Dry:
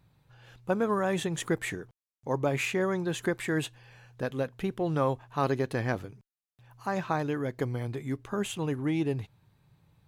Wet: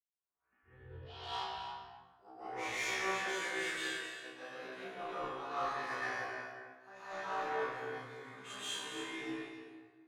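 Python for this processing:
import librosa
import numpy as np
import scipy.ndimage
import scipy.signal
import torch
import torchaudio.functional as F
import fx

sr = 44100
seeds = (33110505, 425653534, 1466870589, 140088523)

p1 = fx.tape_start_head(x, sr, length_s=2.86)
p2 = scipy.signal.sosfilt(scipy.signal.bessel(2, 2800.0, 'lowpass', norm='mag', fs=sr, output='sos'), p1)
p3 = np.diff(p2, prepend=0.0)
p4 = fx.rev_plate(p3, sr, seeds[0], rt60_s=2.4, hf_ratio=0.55, predelay_ms=115, drr_db=-10.0)
p5 = 10.0 ** (-33.5 / 20.0) * np.tanh(p4 / 10.0 ** (-33.5 / 20.0))
p6 = fx.doubler(p5, sr, ms=34.0, db=-2)
p7 = p6 + 10.0 ** (-6.5 / 20.0) * np.pad(p6, (int(274 * sr / 1000.0), 0))[:len(p6)]
p8 = 10.0 ** (-34.0 / 20.0) * (np.abs((p7 / 10.0 ** (-34.0 / 20.0) + 3.0) % 4.0 - 2.0) - 1.0)
p9 = p7 + F.gain(torch.from_numpy(p8), -10.0).numpy()
p10 = fx.peak_eq(p9, sr, hz=200.0, db=-3.5, octaves=1.0)
p11 = fx.comb_fb(p10, sr, f0_hz=64.0, decay_s=0.39, harmonics='all', damping=0.0, mix_pct=100)
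p12 = fx.band_widen(p11, sr, depth_pct=70)
y = F.gain(torch.from_numpy(p12), 7.0).numpy()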